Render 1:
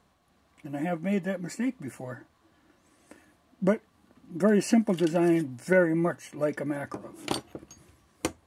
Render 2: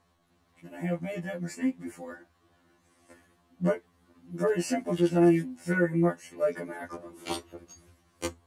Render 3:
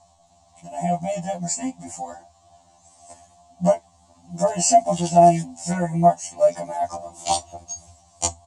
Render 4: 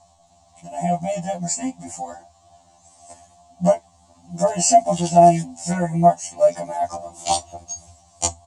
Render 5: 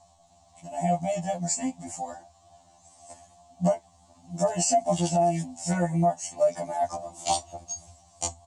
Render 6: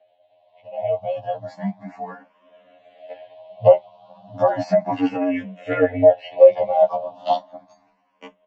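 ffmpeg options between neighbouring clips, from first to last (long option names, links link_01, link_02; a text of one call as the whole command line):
ffmpeg -i in.wav -af "afftfilt=real='re*2*eq(mod(b,4),0)':imag='im*2*eq(mod(b,4),0)':win_size=2048:overlap=0.75" out.wav
ffmpeg -i in.wav -af "firequalizer=gain_entry='entry(120,0);entry(430,-21);entry(690,13);entry(1400,-16);entry(2900,-3);entry(7500,14);entry(12000,-17)':delay=0.05:min_phase=1,volume=9dB" out.wav
ffmpeg -i in.wav -af "bandreject=frequency=980:width=19,volume=1.5dB" out.wav
ffmpeg -i in.wav -af "alimiter=limit=-10.5dB:level=0:latency=1:release=161,volume=-3.5dB" out.wav
ffmpeg -i in.wav -filter_complex "[0:a]highpass=frequency=280:width_type=q:width=0.5412,highpass=frequency=280:width_type=q:width=1.307,lowpass=frequency=3300:width_type=q:width=0.5176,lowpass=frequency=3300:width_type=q:width=0.7071,lowpass=frequency=3300:width_type=q:width=1.932,afreqshift=-65,dynaudnorm=framelen=530:gausssize=7:maxgain=12dB,asplit=2[link_01][link_02];[link_02]afreqshift=0.34[link_03];[link_01][link_03]amix=inputs=2:normalize=1,volume=3dB" out.wav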